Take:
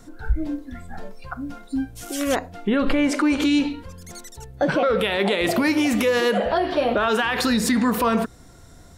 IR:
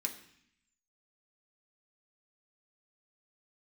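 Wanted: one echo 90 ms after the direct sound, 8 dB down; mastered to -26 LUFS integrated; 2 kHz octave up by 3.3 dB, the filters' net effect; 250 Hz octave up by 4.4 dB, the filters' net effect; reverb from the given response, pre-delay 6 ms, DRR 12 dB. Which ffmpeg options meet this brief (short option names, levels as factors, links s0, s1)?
-filter_complex "[0:a]equalizer=f=250:t=o:g=5,equalizer=f=2000:t=o:g=4,aecho=1:1:90:0.398,asplit=2[s0][s1];[1:a]atrim=start_sample=2205,adelay=6[s2];[s1][s2]afir=irnorm=-1:irlink=0,volume=0.237[s3];[s0][s3]amix=inputs=2:normalize=0,volume=0.376"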